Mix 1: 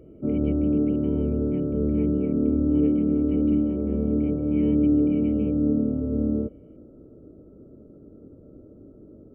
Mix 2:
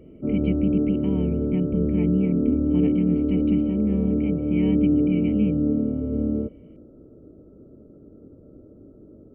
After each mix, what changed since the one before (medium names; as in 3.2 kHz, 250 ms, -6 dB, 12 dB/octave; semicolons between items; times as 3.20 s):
speech +9.5 dB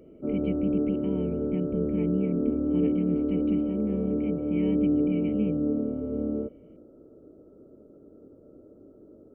speech -6.0 dB; background: add tone controls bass -11 dB, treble +4 dB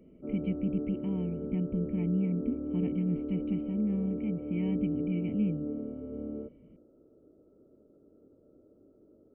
speech: add distance through air 250 m; background -9.0 dB